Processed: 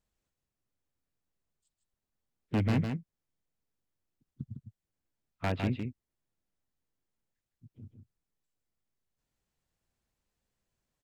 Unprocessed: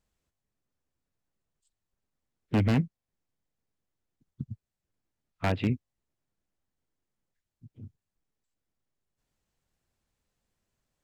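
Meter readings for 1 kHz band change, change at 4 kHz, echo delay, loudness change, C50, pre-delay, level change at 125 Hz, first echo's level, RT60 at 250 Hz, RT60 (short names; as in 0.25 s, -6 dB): -3.0 dB, -3.0 dB, 0.156 s, -4.0 dB, none, none, -3.0 dB, -6.0 dB, none, none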